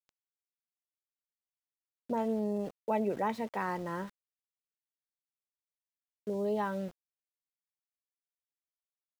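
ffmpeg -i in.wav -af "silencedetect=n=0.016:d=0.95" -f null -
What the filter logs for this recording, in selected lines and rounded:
silence_start: 0.00
silence_end: 2.10 | silence_duration: 2.10
silence_start: 4.06
silence_end: 6.27 | silence_duration: 2.21
silence_start: 6.88
silence_end: 9.20 | silence_duration: 2.32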